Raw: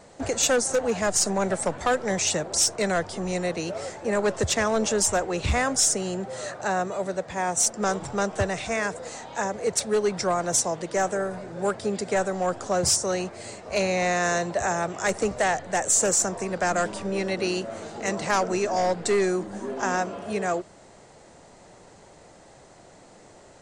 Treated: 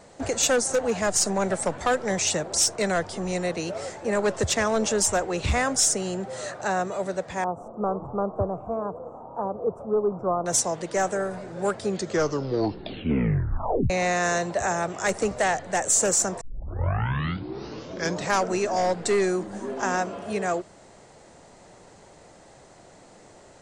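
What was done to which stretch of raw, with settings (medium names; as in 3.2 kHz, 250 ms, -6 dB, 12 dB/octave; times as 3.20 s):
7.44–10.46 s: elliptic low-pass 1.2 kHz
11.84 s: tape stop 2.06 s
16.41 s: tape start 1.94 s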